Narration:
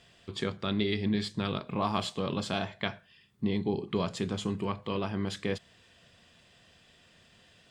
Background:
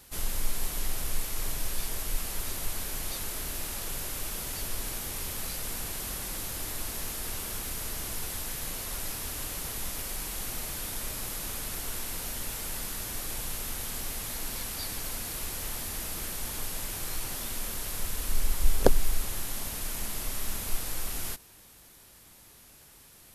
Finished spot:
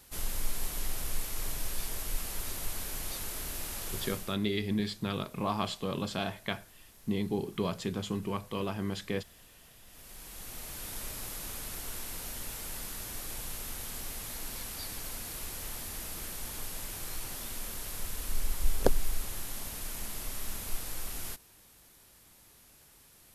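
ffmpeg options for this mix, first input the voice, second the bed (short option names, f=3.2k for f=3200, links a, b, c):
-filter_complex "[0:a]adelay=3650,volume=-2dB[a];[1:a]volume=14.5dB,afade=t=out:st=4.04:d=0.33:silence=0.112202,afade=t=in:st=9.86:d=1.11:silence=0.133352[b];[a][b]amix=inputs=2:normalize=0"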